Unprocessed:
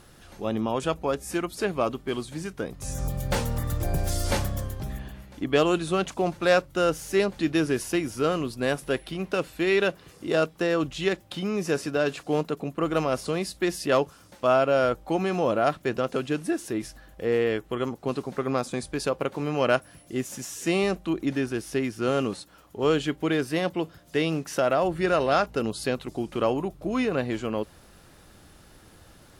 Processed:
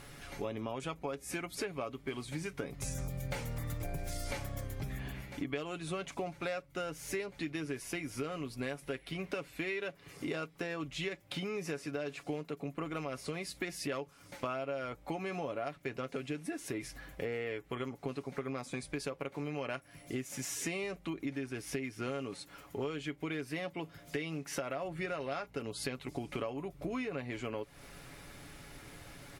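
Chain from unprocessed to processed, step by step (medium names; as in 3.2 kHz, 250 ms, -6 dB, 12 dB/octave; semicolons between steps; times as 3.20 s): peaking EQ 2.2 kHz +9.5 dB 0.36 oct; comb 7.1 ms, depth 47%; compression 10:1, threshold -35 dBFS, peak gain reduction 21.5 dB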